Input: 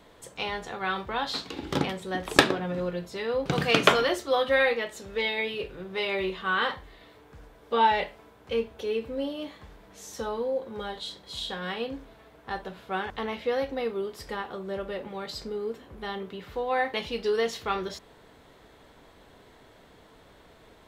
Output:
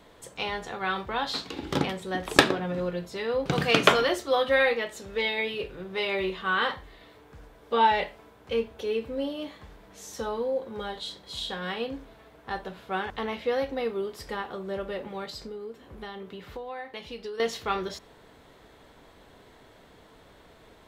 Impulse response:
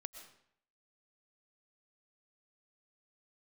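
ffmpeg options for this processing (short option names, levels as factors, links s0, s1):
-filter_complex "[1:a]atrim=start_sample=2205,atrim=end_sample=3969[s0];[0:a][s0]afir=irnorm=-1:irlink=0,asettb=1/sr,asplit=3[s1][s2][s3];[s1]atrim=end=15.244[s4];[s2]atrim=start=15.24:end=17.4,asetpts=PTS-STARTPTS,afade=t=in:d=0.004:c=qsin,afade=t=out:st=2.156:d=0.004:c=qsin,acompressor=threshold=0.00794:ratio=4[s5];[s3]atrim=start=17.396[s6];[s4][s5]acrossfade=d=0.004:c1=hsin:c2=qsin[s7];[s7][s6]acrossfade=d=0.004:c1=qsin:c2=hsin,volume=1.78"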